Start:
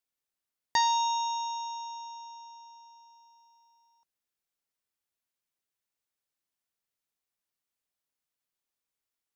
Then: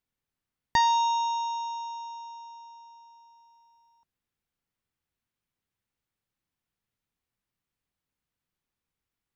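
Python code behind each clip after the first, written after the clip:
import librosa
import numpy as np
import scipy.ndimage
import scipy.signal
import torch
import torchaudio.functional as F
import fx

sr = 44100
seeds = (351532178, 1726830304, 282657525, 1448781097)

y = fx.bass_treble(x, sr, bass_db=12, treble_db=-8)
y = fx.notch(y, sr, hz=630.0, q=12.0)
y = y * 10.0 ** (3.5 / 20.0)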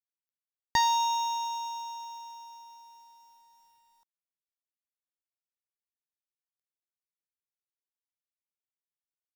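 y = fx.high_shelf(x, sr, hz=5600.0, db=11.0)
y = fx.quant_companded(y, sr, bits=6)
y = y * 10.0 ** (-3.0 / 20.0)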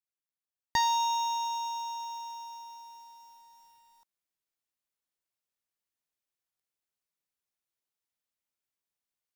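y = fx.rider(x, sr, range_db=4, speed_s=2.0)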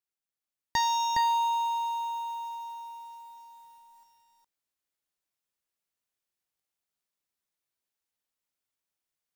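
y = x + 10.0 ** (-3.5 / 20.0) * np.pad(x, (int(413 * sr / 1000.0), 0))[:len(x)]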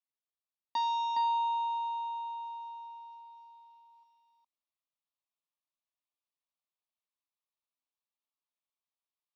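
y = fx.cabinet(x, sr, low_hz=310.0, low_slope=24, high_hz=3600.0, hz=(320.0, 510.0, 760.0, 1200.0, 1900.0, 3100.0), db=(-6, -9, -8, 7, -9, -3))
y = fx.fixed_phaser(y, sr, hz=410.0, stages=6)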